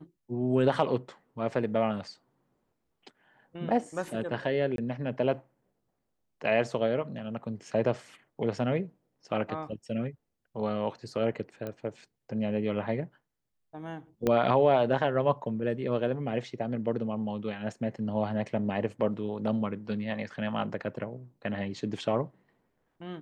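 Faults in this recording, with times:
4.76–4.78 gap 22 ms
11.67 pop -24 dBFS
14.27 pop -14 dBFS

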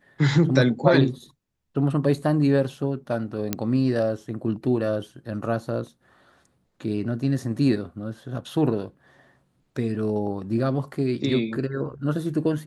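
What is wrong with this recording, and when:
3.53 pop -8 dBFS

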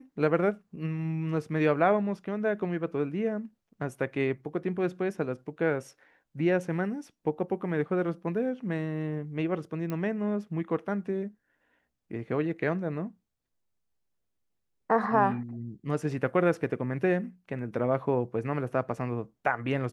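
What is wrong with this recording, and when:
9.9 pop -21 dBFS

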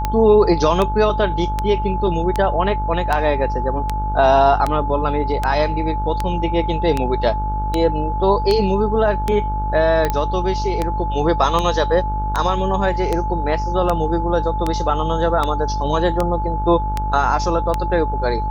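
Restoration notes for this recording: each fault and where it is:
buzz 50 Hz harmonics 31 -23 dBFS
tick 78 rpm -6 dBFS
tone 860 Hz -23 dBFS
10.1 pop -7 dBFS

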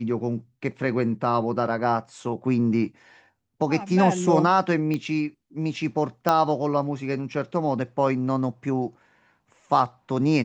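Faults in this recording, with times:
4.94 pop -16 dBFS
6.29 pop -8 dBFS

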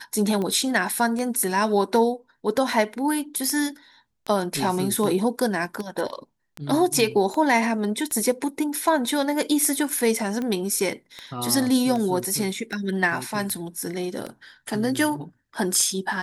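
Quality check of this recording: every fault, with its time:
tick 78 rpm -17 dBFS

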